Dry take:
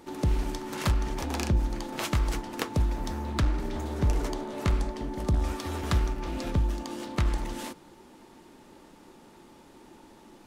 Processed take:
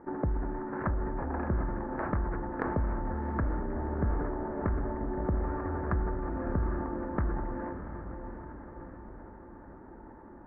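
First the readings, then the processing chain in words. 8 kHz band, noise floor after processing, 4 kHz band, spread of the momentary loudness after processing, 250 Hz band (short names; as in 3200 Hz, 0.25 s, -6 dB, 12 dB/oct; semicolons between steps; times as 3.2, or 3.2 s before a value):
under -40 dB, -49 dBFS, under -35 dB, 16 LU, -1.0 dB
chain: elliptic low-pass 1700 Hz, stop band 50 dB; transient shaper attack +4 dB, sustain -1 dB; compressor 3:1, threshold -30 dBFS, peak gain reduction 9 dB; diffused feedback echo 0.72 s, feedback 54%, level -8.5 dB; sustainer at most 28 dB/s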